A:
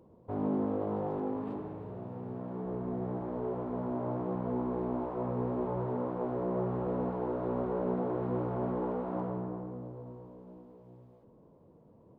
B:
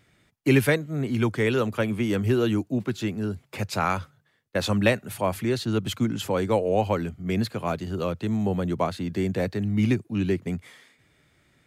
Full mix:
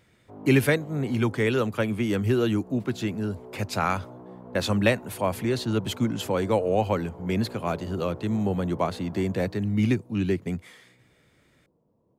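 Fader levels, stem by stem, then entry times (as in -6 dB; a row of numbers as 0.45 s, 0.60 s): -9.5 dB, -0.5 dB; 0.00 s, 0.00 s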